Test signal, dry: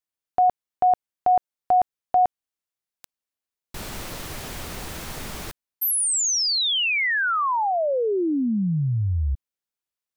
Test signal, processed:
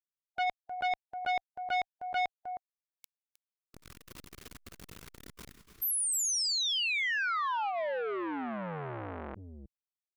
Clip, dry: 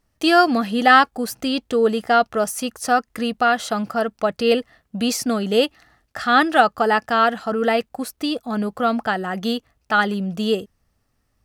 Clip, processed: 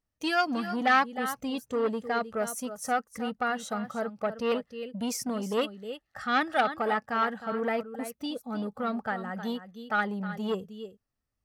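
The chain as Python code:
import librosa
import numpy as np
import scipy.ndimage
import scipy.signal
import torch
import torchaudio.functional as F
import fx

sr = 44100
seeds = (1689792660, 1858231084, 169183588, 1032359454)

y = fx.noise_reduce_blind(x, sr, reduce_db=9)
y = y + 10.0 ** (-12.0 / 20.0) * np.pad(y, (int(312 * sr / 1000.0), 0))[:len(y)]
y = fx.transformer_sat(y, sr, knee_hz=1400.0)
y = y * librosa.db_to_amplitude(-8.5)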